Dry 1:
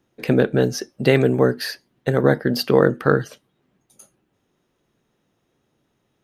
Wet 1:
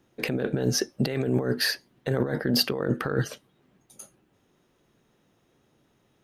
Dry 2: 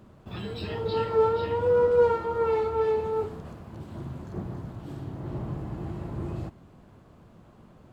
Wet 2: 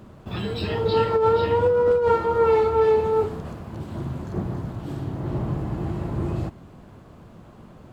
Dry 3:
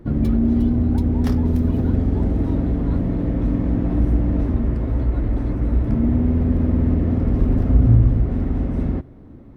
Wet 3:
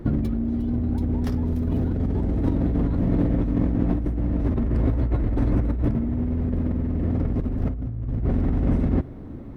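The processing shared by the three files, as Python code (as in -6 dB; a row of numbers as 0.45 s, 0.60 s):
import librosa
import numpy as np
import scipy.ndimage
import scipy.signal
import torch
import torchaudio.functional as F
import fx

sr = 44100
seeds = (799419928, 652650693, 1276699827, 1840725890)

y = fx.over_compress(x, sr, threshold_db=-23.0, ratio=-1.0)
y = y * 10.0 ** (-9 / 20.0) / np.max(np.abs(y))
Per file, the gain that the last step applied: -2.5 dB, +6.0 dB, +0.5 dB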